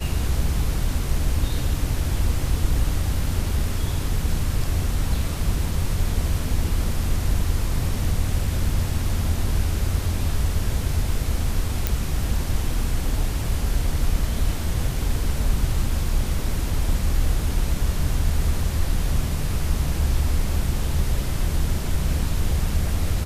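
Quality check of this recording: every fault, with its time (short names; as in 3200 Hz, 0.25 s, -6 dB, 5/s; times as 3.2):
11.87 pop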